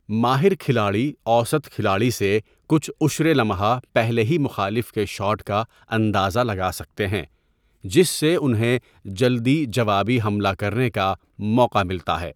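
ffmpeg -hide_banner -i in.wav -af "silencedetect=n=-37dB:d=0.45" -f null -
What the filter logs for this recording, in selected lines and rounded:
silence_start: 7.25
silence_end: 7.84 | silence_duration: 0.60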